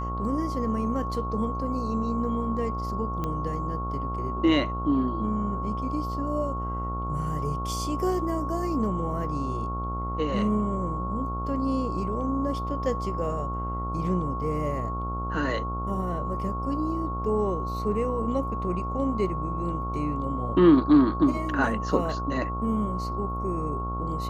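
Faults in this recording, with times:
buzz 60 Hz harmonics 23 -32 dBFS
tone 1100 Hz -32 dBFS
3.24 pop -18 dBFS

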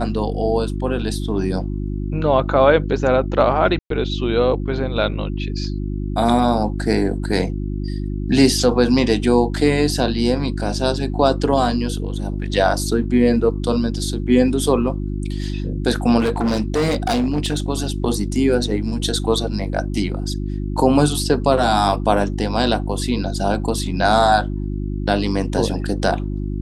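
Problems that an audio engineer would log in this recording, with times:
hum 50 Hz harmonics 7 -24 dBFS
3.79–3.9 gap 0.113 s
16.19–17.7 clipped -14.5 dBFS

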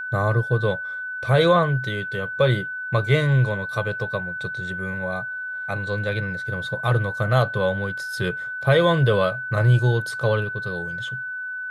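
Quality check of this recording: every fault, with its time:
tone 1500 Hz -28 dBFS

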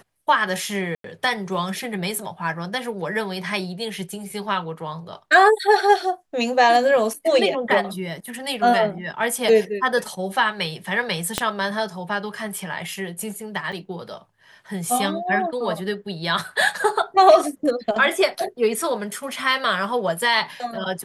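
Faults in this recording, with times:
0.95–1.04 gap 93 ms
11.38 pop -4 dBFS
13.72–13.73 gap 6.6 ms

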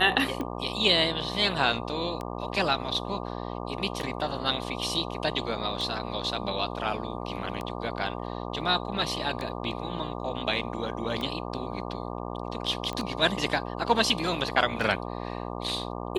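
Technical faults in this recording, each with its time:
buzz 60 Hz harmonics 20 -35 dBFS
tick 33 1/3 rpm -20 dBFS
12.93 pop -20 dBFS

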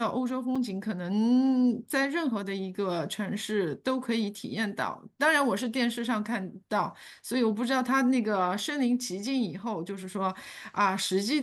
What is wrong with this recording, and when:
0.55–0.56 gap 5.1 ms

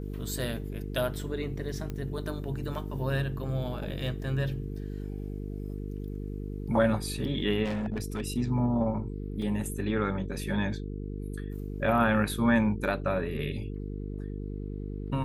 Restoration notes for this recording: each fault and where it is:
buzz 50 Hz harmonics 9 -36 dBFS
1.9 pop -23 dBFS
7.64–8.22 clipped -28 dBFS
9.42 gap 3.5 ms

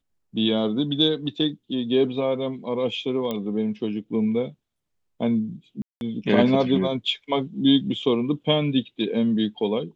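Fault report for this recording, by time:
3.31 pop -15 dBFS
5.82–6.01 gap 0.191 s

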